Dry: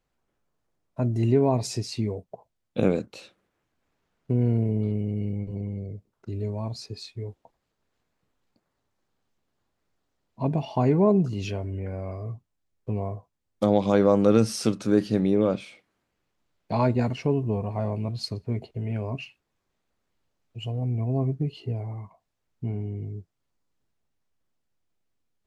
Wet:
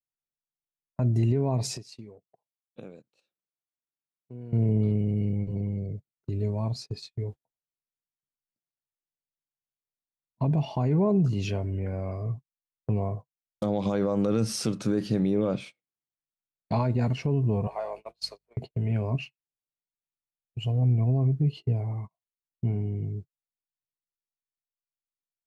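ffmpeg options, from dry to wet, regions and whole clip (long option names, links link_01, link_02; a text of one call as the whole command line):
ffmpeg -i in.wav -filter_complex "[0:a]asettb=1/sr,asplit=3[link_01][link_02][link_03];[link_01]atrim=end=1.744[link_04];[link_02]atrim=start=1.74:end=4.53,asetpts=PTS-STARTPTS,afade=type=in:duration=0.004:curve=qsin,afade=type=out:start_time=2.786:duration=0.004:curve=qsin,highpass=frequency=250:poles=1,acompressor=threshold=-36dB:ratio=12:attack=3.2:release=140:knee=1:detection=peak,bandreject=frequency=2100:width=16[link_05];[link_03]atrim=start=4.526[link_06];[link_04][link_05]acrossfade=duration=0.004:curve1=hsin:curve2=qsin[link_07];[link_07][link_06]acrossfade=duration=0.004:curve1=qsin:curve2=hsin,asettb=1/sr,asplit=3[link_08][link_09][link_10];[link_08]atrim=end=17.674[link_11];[link_09]atrim=start=17.67:end=18.57,asetpts=PTS-STARTPTS,afade=type=in:duration=0.004:curve=qsin,afade=type=out:start_time=0.896:duration=0.004:curve=qsin,highpass=frequency=510:width=0.5412,highpass=frequency=510:width=1.3066,aeval=exprs='val(0)+0.000794*(sin(2*PI*50*n/s)+sin(2*PI*2*50*n/s)/2+sin(2*PI*3*50*n/s)/3+sin(2*PI*4*50*n/s)/4+sin(2*PI*5*50*n/s)/5)':channel_layout=same[link_12];[link_10]atrim=start=18.566[link_13];[link_11][link_12]acrossfade=duration=0.004:curve1=hsin:curve2=qsin[link_14];[link_14][link_13]acrossfade=duration=0.004:curve1=qsin:curve2=hsin,agate=range=-31dB:threshold=-39dB:ratio=16:detection=peak,equalizer=frequency=140:width=2.5:gain=7.5,alimiter=limit=-16.5dB:level=0:latency=1:release=77" out.wav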